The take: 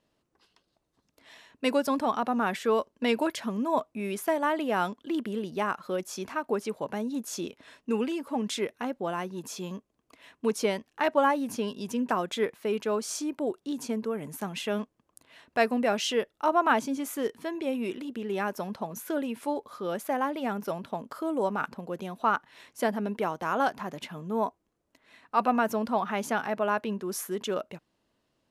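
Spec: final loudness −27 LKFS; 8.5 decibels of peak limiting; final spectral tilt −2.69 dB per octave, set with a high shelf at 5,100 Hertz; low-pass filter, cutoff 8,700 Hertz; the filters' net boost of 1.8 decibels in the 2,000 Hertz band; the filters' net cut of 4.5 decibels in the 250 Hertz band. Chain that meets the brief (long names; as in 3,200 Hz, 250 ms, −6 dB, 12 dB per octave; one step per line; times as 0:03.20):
low-pass filter 8,700 Hz
parametric band 250 Hz −5.5 dB
parametric band 2,000 Hz +3.5 dB
high-shelf EQ 5,100 Hz −7 dB
level +5.5 dB
brickwall limiter −12 dBFS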